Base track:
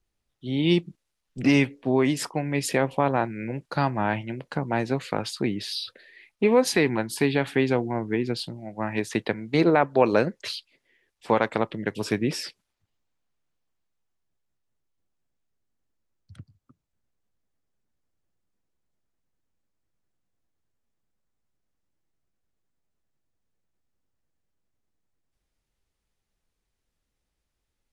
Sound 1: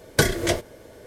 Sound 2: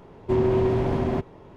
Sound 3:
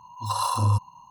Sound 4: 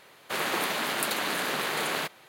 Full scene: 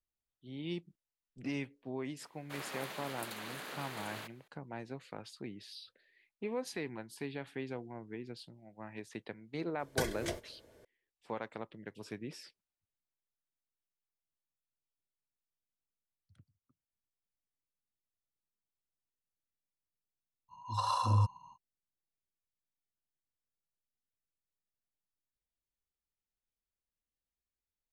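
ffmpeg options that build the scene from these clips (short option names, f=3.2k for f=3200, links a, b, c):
-filter_complex "[0:a]volume=-18.5dB[a];[3:a]lowpass=5.9k[b];[4:a]atrim=end=2.28,asetpts=PTS-STARTPTS,volume=-15.5dB,afade=t=in:d=0.004:c=hsin,afade=t=out:st=2.276:d=0.004:c=hsin,adelay=2200[c];[1:a]atrim=end=1.06,asetpts=PTS-STARTPTS,volume=-15.5dB,afade=t=in:d=0.004:c=hsin,afade=t=out:st=1.056:d=0.004:c=hsin,adelay=9790[d];[b]atrim=end=1.1,asetpts=PTS-STARTPTS,volume=-6.5dB,afade=t=in:d=0.05,afade=t=out:st=1.05:d=0.05,adelay=20480[e];[a][c][d][e]amix=inputs=4:normalize=0"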